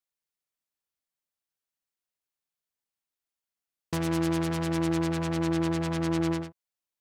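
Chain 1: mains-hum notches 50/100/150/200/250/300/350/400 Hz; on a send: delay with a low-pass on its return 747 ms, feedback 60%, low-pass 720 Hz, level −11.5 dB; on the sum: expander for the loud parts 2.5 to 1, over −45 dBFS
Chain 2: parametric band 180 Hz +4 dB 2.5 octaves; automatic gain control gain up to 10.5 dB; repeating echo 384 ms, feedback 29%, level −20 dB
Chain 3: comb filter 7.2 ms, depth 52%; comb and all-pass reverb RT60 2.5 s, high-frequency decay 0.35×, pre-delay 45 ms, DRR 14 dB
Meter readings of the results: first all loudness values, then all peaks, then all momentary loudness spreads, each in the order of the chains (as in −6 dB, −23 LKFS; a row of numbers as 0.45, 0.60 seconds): −31.5, −15.5, −29.0 LKFS; −19.0, −5.5, −18.0 dBFS; 5, 7, 4 LU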